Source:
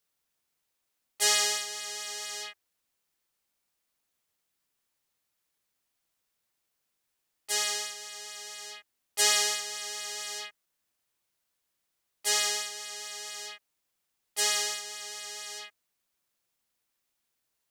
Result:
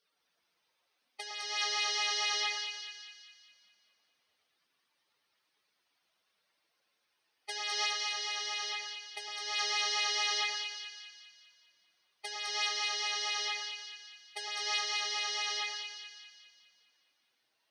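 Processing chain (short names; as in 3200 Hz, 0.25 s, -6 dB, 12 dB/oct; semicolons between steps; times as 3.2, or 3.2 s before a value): spectral contrast raised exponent 2.5; HPF 400 Hz 6 dB/oct; negative-ratio compressor -36 dBFS, ratio -1; polynomial smoothing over 15 samples; split-band echo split 1800 Hz, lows 0.109 s, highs 0.204 s, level -4.5 dB; gain +3 dB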